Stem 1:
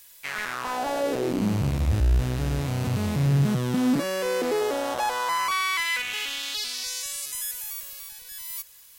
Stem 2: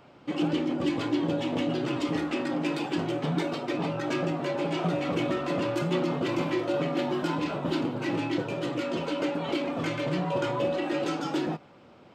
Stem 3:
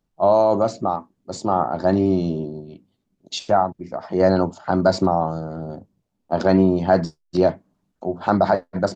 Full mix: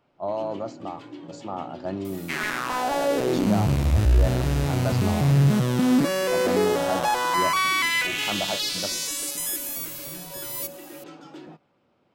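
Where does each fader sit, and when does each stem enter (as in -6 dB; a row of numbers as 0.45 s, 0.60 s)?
+3.0 dB, -13.5 dB, -13.0 dB; 2.05 s, 0.00 s, 0.00 s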